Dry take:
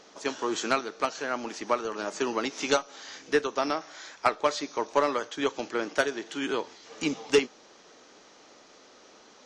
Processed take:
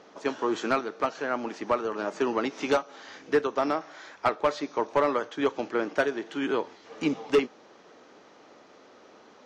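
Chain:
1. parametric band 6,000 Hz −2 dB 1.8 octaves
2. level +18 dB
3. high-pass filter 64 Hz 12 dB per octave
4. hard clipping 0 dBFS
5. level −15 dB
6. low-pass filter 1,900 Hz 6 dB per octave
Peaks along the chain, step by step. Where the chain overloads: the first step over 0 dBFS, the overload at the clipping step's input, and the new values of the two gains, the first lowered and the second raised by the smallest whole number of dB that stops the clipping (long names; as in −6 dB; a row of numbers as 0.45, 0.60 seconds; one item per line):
−11.0, +7.0, +8.0, 0.0, −15.0, −15.0 dBFS
step 2, 8.0 dB
step 2 +10 dB, step 5 −7 dB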